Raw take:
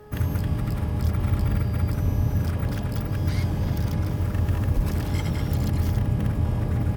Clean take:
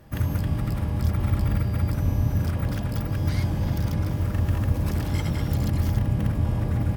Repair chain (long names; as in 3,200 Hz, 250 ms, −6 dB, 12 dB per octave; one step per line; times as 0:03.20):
clipped peaks rebuilt −14 dBFS
hum removal 421.1 Hz, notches 4
0:04.75–0:04.87: high-pass filter 140 Hz 24 dB per octave